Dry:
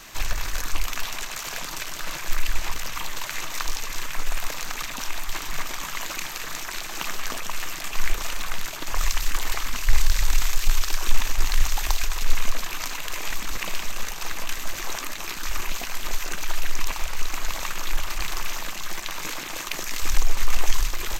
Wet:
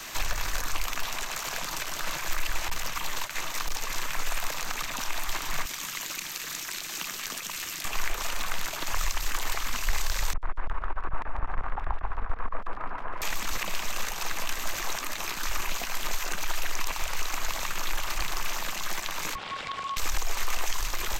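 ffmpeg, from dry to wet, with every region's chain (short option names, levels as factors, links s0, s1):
-filter_complex "[0:a]asettb=1/sr,asplit=3[s0][s1][s2];[s0]atrim=end=2.684[s3];[s1]atrim=start=2.68:end=3.87,asetpts=PTS-STARTPTS,afade=t=in:d=0.004:c=qsin,afade=t=out:st=1.186:d=0.004:c=qsin,agate=range=0.0224:threshold=0.0447:ratio=3:release=100:detection=peak,asoftclip=type=hard:threshold=0.112[s4];[s2]atrim=start=3.866[s5];[s3][s4]acrossfade=d=0.004:c1=hsin:c2=qsin[s6];[s6][s5]acrossfade=d=0.004:c1=qsin:c2=hsin,asettb=1/sr,asplit=3[s7][s8][s9];[s7]atrim=end=5.654[s10];[s8]atrim=start=5.65:end=7.85,asetpts=PTS-STARTPTS,afade=t=in:d=0.004:c=qsin,afade=t=out:st=2.196:d=0.004:c=qsin,highpass=f=130:p=1,equalizer=f=740:t=o:w=2.3:g=-12.5[s11];[s9]atrim=start=7.846[s12];[s10][s11]acrossfade=d=0.004:c1=hsin:c2=qsin[s13];[s13][s12]acrossfade=d=0.004:c1=qsin:c2=hsin,asettb=1/sr,asplit=3[s14][s15][s16];[s14]atrim=end=10.334[s17];[s15]atrim=start=10.33:end=13.22,asetpts=PTS-STARTPTS,afade=t=in:d=0.004:c=qsin,afade=t=out:st=2.886:d=0.004:c=qsin,lowpass=f=1300:w=0.5412,lowpass=f=1300:w=1.3066,aeval=exprs='clip(val(0),-1,0.0398)':c=same,aecho=1:1:144|288|432|576:0.562|0.163|0.0473|0.0137,atrim=end_sample=127449[s18];[s16]atrim=start=13.216[s19];[s17][s18]acrossfade=d=0.004:c1=hsin:c2=qsin[s20];[s20][s19]acrossfade=d=0.004:c1=qsin:c2=hsin,asettb=1/sr,asplit=3[s21][s22][s23];[s21]atrim=end=19.354[s24];[s22]atrim=start=19.35:end=19.97,asetpts=PTS-STARTPTS,afade=t=in:d=0.004:c=qsin,afade=t=out:st=0.616:d=0.004:c=qsin,lowpass=2700,acompressor=threshold=0.0316:ratio=6:attack=3.2:release=140:knee=1:detection=peak,aeval=exprs='val(0)*sin(2*PI*1100*n/s)':c=same[s25];[s23]atrim=start=19.966[s26];[s24][s25]acrossfade=d=0.004:c1=hsin:c2=qsin[s27];[s27][s26]acrossfade=d=0.004:c1=qsin:c2=hsin,lowshelf=f=200:g=-7,acrossover=split=220|460|1200[s28][s29][s30][s31];[s28]acompressor=threshold=0.0447:ratio=4[s32];[s29]acompressor=threshold=0.00112:ratio=4[s33];[s30]acompressor=threshold=0.00794:ratio=4[s34];[s31]acompressor=threshold=0.0141:ratio=4[s35];[s32][s33][s34][s35]amix=inputs=4:normalize=0,volume=1.68"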